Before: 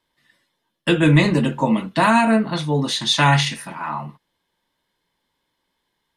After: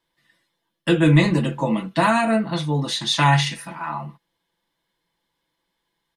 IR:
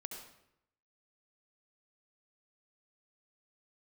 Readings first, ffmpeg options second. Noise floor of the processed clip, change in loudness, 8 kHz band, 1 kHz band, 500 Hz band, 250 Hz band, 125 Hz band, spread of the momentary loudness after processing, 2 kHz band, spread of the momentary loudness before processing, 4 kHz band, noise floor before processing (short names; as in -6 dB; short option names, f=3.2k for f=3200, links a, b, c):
-78 dBFS, -2.0 dB, -2.5 dB, -2.0 dB, -1.5 dB, -2.0 dB, -0.5 dB, 14 LU, -2.5 dB, 13 LU, -2.5 dB, -75 dBFS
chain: -af "aecho=1:1:6:0.45,volume=-3dB"